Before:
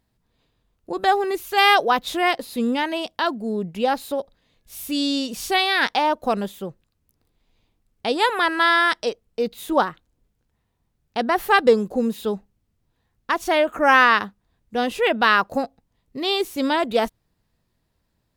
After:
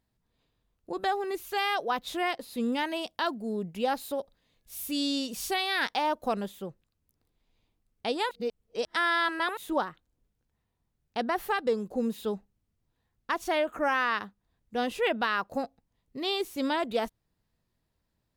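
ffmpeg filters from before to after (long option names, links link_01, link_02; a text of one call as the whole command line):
ffmpeg -i in.wav -filter_complex "[0:a]asettb=1/sr,asplit=3[link_01][link_02][link_03];[link_01]atrim=end=2.724[link_04];[link_02]atrim=start=2.72:end=6.28,asetpts=PTS-STARTPTS,afade=type=in:duration=0.004:curve=qsin,afade=type=out:start_time=3.556:duration=0.004:curve=qsin,highshelf=frequency=7600:gain=5.5[link_05];[link_03]atrim=start=6.276[link_06];[link_04][link_05]acrossfade=duration=0.004:curve1=hsin:curve2=qsin[link_07];[link_07][link_06]acrossfade=duration=0.004:curve1=qsin:curve2=hsin,asplit=3[link_08][link_09][link_10];[link_08]atrim=end=8.312[link_11];[link_09]atrim=start=8.308:end=9.572,asetpts=PTS-STARTPTS,areverse[link_12];[link_10]atrim=start=9.568[link_13];[link_11][link_12]acrossfade=duration=0.004:curve1=hsin:curve2=hsin[link_14];[link_14][link_13]acrossfade=duration=0.004:curve1=hsin:curve2=hsin,alimiter=limit=-10dB:level=0:latency=1:release=360,volume=-7dB" out.wav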